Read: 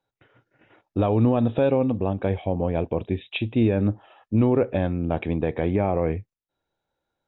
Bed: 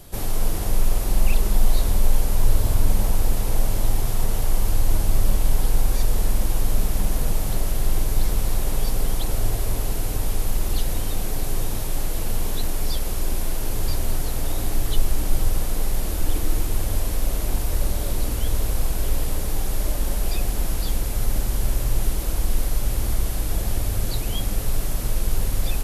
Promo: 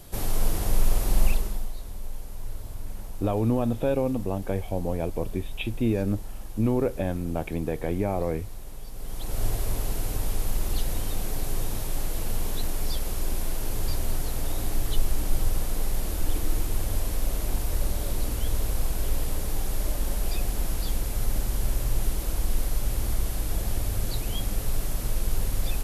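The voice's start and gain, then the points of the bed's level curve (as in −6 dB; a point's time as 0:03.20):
2.25 s, −4.5 dB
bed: 0:01.25 −2 dB
0:01.74 −17.5 dB
0:08.90 −17.5 dB
0:09.43 −4 dB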